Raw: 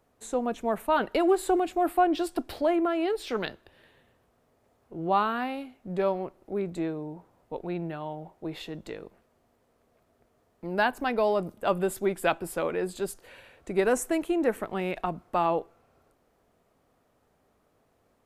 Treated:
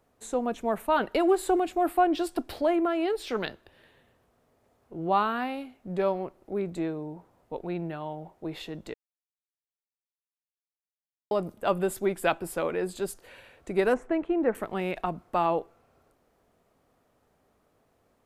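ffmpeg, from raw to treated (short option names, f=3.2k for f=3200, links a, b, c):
-filter_complex "[0:a]asettb=1/sr,asplit=3[a][b][c];[a]atrim=end=13.944[d];[b]atrim=start=13.94:end=14.55,asetpts=PTS-STARTPTS,afade=t=in:d=0.004:c=qsin,afade=t=out:st=0.606:d=0.004:c=qsin,lowpass=1.9k[e];[c]atrim=start=14.546[f];[d][e]acrossfade=d=0.004:c1=hsin:c2=qsin[g];[g][f]acrossfade=d=0.004:c1=qsin:c2=hsin,asplit=3[h][i][j];[h]atrim=end=8.94,asetpts=PTS-STARTPTS,afade=t=out:st=8.936:d=0.004:c=hsin[k];[i]atrim=start=8.94:end=11.31,asetpts=PTS-STARTPTS,volume=0[l];[j]atrim=start=11.31,asetpts=PTS-STARTPTS,afade=t=in:d=0.004:c=hsin[m];[k][l][m]concat=n=3:v=0:a=1"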